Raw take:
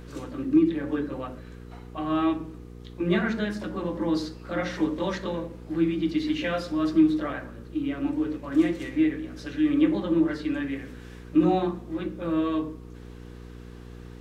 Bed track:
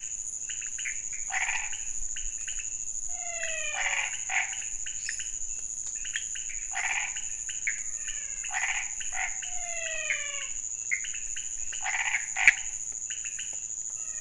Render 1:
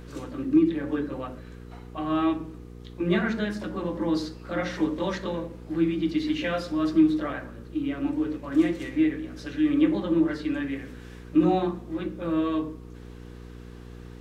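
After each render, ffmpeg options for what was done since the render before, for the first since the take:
-af anull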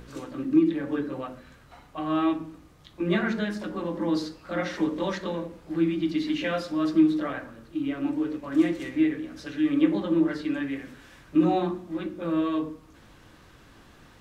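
-af "bandreject=f=60:t=h:w=4,bandreject=f=120:t=h:w=4,bandreject=f=180:t=h:w=4,bandreject=f=240:t=h:w=4,bandreject=f=300:t=h:w=4,bandreject=f=360:t=h:w=4,bandreject=f=420:t=h:w=4,bandreject=f=480:t=h:w=4"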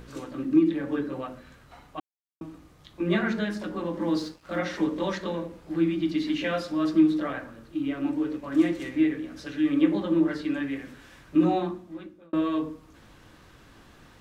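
-filter_complex "[0:a]asettb=1/sr,asplit=3[a][b][c];[a]atrim=end=3.934[d];[b]atrim=start=3.93:end=4.59,asetpts=PTS-STARTPTS,afade=t=in:d=0.004:c=qsin,afade=t=out:st=0.656:d=0.004:c=qsin,aeval=exprs='sgn(val(0))*max(abs(val(0))-0.00237,0)':c=same[e];[c]atrim=start=4.586[f];[d][e]acrossfade=d=0.004:c1=hsin:c2=qsin[g];[g][f]acrossfade=d=0.004:c1=qsin:c2=hsin,asplit=4[h][i][j][k];[h]atrim=end=2,asetpts=PTS-STARTPTS,afade=t=out:st=1.996:d=0.004:c=hsin[l];[i]atrim=start=2:end=2.41,asetpts=PTS-STARTPTS,volume=0[m];[j]atrim=start=2.41:end=12.33,asetpts=PTS-STARTPTS,afade=t=in:d=0.004:c=hsin,afade=t=out:st=9.04:d=0.88[n];[k]atrim=start=12.33,asetpts=PTS-STARTPTS,afade=t=in:d=0.004:c=hsin[o];[l][m][n][o]concat=n=4:v=0:a=1"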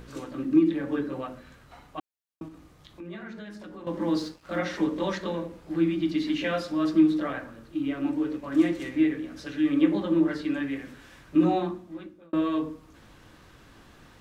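-filter_complex "[0:a]asettb=1/sr,asplit=3[a][b][c];[a]atrim=end=2.484[d];[b]atrim=start=2.48:end=3.87,asetpts=PTS-STARTPTS,afade=t=in:d=0.004:c=qsin,afade=t=out:st=1.386:d=0.004:c=qsin,acompressor=threshold=-44dB:ratio=2.5:attack=3.2:release=140:knee=1:detection=peak[e];[c]atrim=start=3.866[f];[d][e]acrossfade=d=0.004:c1=hsin:c2=qsin[g];[g][f]acrossfade=d=0.004:c1=qsin:c2=hsin"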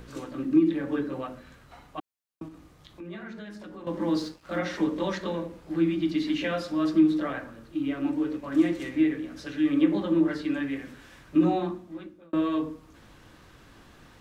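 -filter_complex "[0:a]acrossover=split=390[a][b];[b]acompressor=threshold=-26dB:ratio=6[c];[a][c]amix=inputs=2:normalize=0"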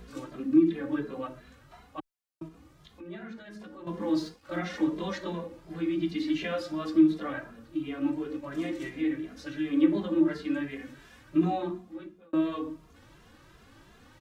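-filter_complex "[0:a]asplit=2[a][b];[b]adelay=2.5,afreqshift=2.8[c];[a][c]amix=inputs=2:normalize=1"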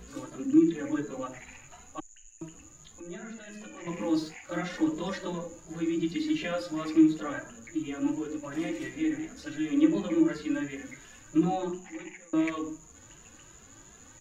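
-filter_complex "[1:a]volume=-20dB[a];[0:a][a]amix=inputs=2:normalize=0"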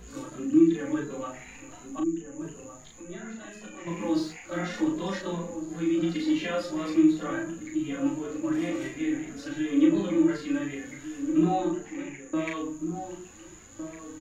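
-filter_complex "[0:a]asplit=2[a][b];[b]adelay=36,volume=-3dB[c];[a][c]amix=inputs=2:normalize=0,asplit=2[d][e];[e]adelay=1458,volume=-9dB,highshelf=f=4k:g=-32.8[f];[d][f]amix=inputs=2:normalize=0"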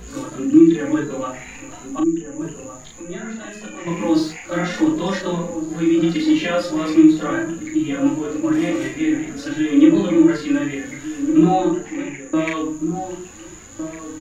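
-af "volume=9.5dB,alimiter=limit=-2dB:level=0:latency=1"

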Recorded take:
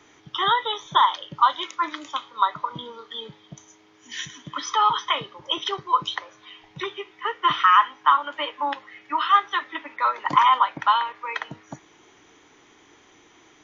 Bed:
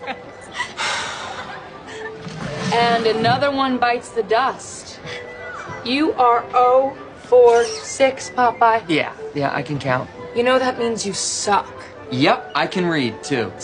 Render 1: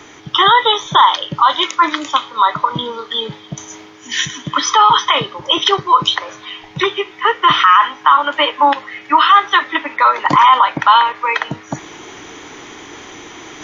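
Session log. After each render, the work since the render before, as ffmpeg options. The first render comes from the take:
-af "areverse,acompressor=mode=upward:threshold=-41dB:ratio=2.5,areverse,alimiter=level_in=14.5dB:limit=-1dB:release=50:level=0:latency=1"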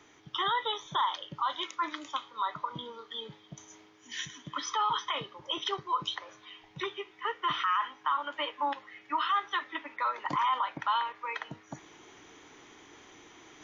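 -af "volume=-19.5dB"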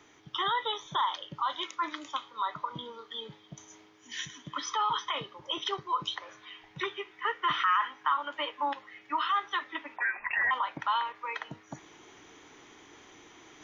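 -filter_complex "[0:a]asettb=1/sr,asplit=3[a][b][c];[a]atrim=end=6.234[d];[b]atrim=start=6.23:end=8.14,asetpts=PTS-STARTPTS,afade=t=in:d=0.004:c=qsin,afade=t=out:st=1.906:d=0.004:c=qsin,equalizer=f=1.7k:w=1.5:g=5[e];[c]atrim=start=8.136[f];[d][e]acrossfade=d=0.004:c1=hsin:c2=qsin[g];[g][f]acrossfade=d=0.004:c1=qsin:c2=hsin,asettb=1/sr,asplit=3[h][i][j];[h]atrim=end=9.984[k];[i]atrim=start=9.98:end=10.51,asetpts=PTS-STARTPTS,afade=t=in:d=0.004:c=qsin,afade=t=out:st=0.526:d=0.004:c=qsin,lowpass=f=2.5k:t=q:w=0.5098,lowpass=f=2.5k:t=q:w=0.6013,lowpass=f=2.5k:t=q:w=0.9,lowpass=f=2.5k:t=q:w=2.563,afreqshift=-2900[l];[j]atrim=start=10.506[m];[k][l]acrossfade=d=0.004:c1=hsin:c2=qsin[n];[n][m]acrossfade=d=0.004:c1=qsin:c2=hsin"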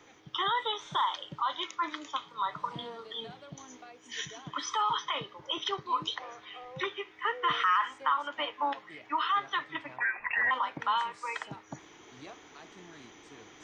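-filter_complex "[1:a]volume=-33.5dB[a];[0:a][a]amix=inputs=2:normalize=0"

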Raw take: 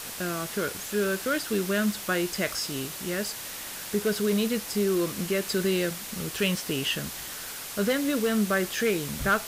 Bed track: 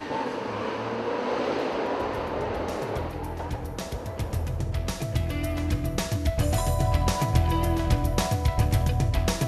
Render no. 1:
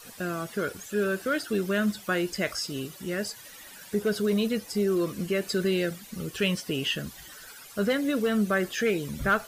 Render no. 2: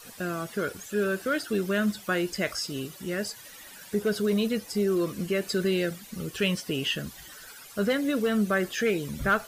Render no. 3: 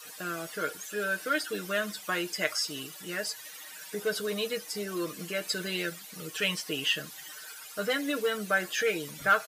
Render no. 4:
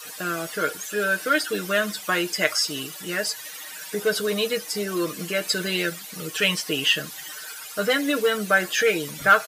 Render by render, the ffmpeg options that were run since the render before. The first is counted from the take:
-af "afftdn=nr=14:nf=-38"
-af anull
-af "highpass=f=760:p=1,aecho=1:1:6.5:0.7"
-af "volume=7.5dB"

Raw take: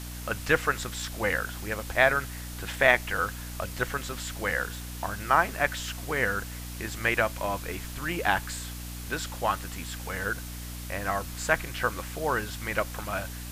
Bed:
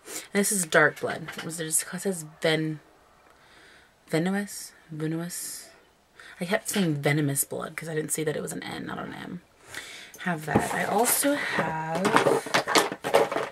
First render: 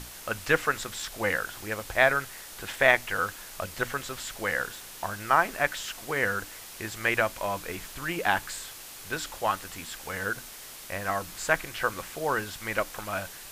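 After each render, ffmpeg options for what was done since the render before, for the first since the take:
-af "bandreject=f=60:t=h:w=6,bandreject=f=120:t=h:w=6,bandreject=f=180:t=h:w=6,bandreject=f=240:t=h:w=6,bandreject=f=300:t=h:w=6"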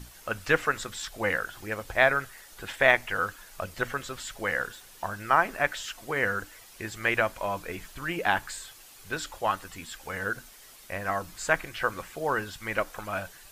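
-af "afftdn=nr=9:nf=-44"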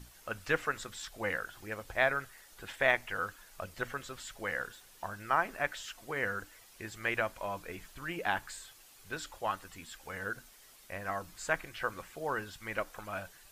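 -af "volume=-7dB"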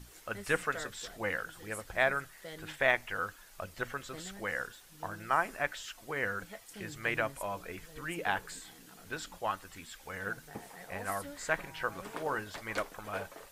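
-filter_complex "[1:a]volume=-22.5dB[a];[0:a][a]amix=inputs=2:normalize=0"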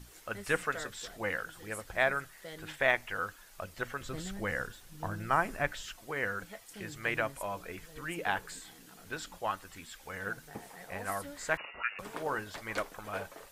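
-filter_complex "[0:a]asettb=1/sr,asplit=3[a][b][c];[a]atrim=end=4.014[d];[b]atrim=start=4.01:end=5.96,asetpts=PTS-STARTPTS,afade=t=in:d=0.004:c=qsin,afade=t=out:st=1.946:d=0.004:c=qsin,lowshelf=f=250:g=11.5[e];[c]atrim=start=5.956[f];[d][e]acrossfade=d=0.004:c1=hsin:c2=qsin[g];[g][f]acrossfade=d=0.004:c1=qsin:c2=hsin,asettb=1/sr,asplit=3[h][i][j];[h]atrim=end=11.574[k];[i]atrim=start=11.57:end=11.99,asetpts=PTS-STARTPTS,afade=t=in:d=0.004:c=qsin,afade=t=out:st=0.416:d=0.004:c=qsin,lowpass=f=2.5k:t=q:w=0.5098,lowpass=f=2.5k:t=q:w=0.6013,lowpass=f=2.5k:t=q:w=0.9,lowpass=f=2.5k:t=q:w=2.563,afreqshift=-2900[l];[j]atrim=start=11.986[m];[k][l]acrossfade=d=0.004:c1=hsin:c2=qsin[n];[n][m]acrossfade=d=0.004:c1=qsin:c2=hsin"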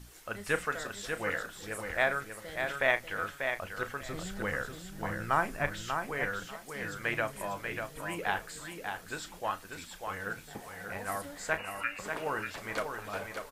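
-filter_complex "[0:a]asplit=2[a][b];[b]adelay=34,volume=-12dB[c];[a][c]amix=inputs=2:normalize=0,aecho=1:1:591|1182|1773:0.501|0.0902|0.0162"

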